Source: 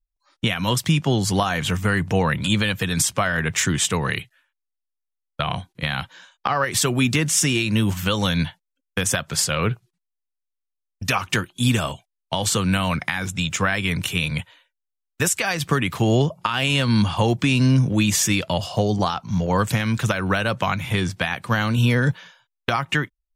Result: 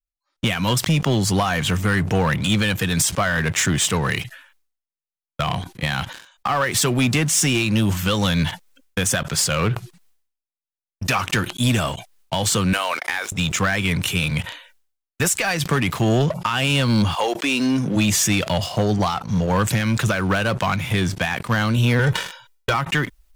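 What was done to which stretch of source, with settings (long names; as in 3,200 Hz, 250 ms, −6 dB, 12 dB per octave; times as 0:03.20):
0:12.73–0:13.32: high-pass filter 450 Hz 24 dB per octave
0:17.14–0:17.95: high-pass filter 530 Hz → 140 Hz 24 dB per octave
0:21.99–0:22.74: comb filter 2.1 ms, depth 80%
whole clip: leveller curve on the samples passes 3; level that may fall only so fast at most 97 dB per second; level −8.5 dB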